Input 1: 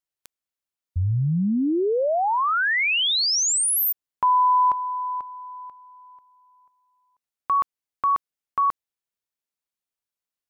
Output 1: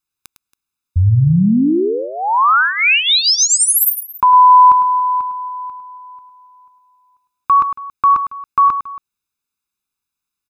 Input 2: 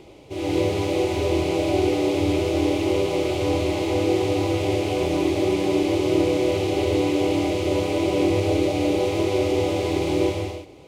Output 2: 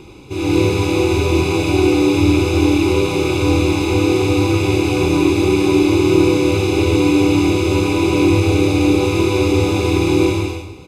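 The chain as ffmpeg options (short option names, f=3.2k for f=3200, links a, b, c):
-af "aecho=1:1:0.8:0.81,aecho=1:1:105|277:0.316|0.112,volume=5.5dB"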